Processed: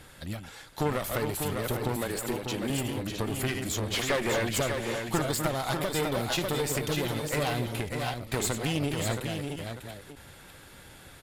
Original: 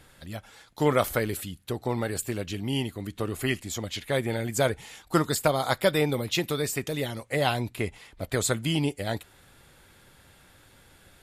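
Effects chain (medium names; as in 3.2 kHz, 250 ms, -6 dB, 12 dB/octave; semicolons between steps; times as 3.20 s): chunks repeated in reverse 354 ms, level -9 dB; 1.96–2.70 s: high-pass 230 Hz 12 dB/octave; compression 2:1, threshold -31 dBFS, peak gain reduction 8.5 dB; 3.94–4.49 s: overdrive pedal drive 19 dB, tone 2.4 kHz, clips at -18.5 dBFS; one-sided clip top -36.5 dBFS; delay 596 ms -6 dB; endings held to a fixed fall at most 110 dB/s; trim +4.5 dB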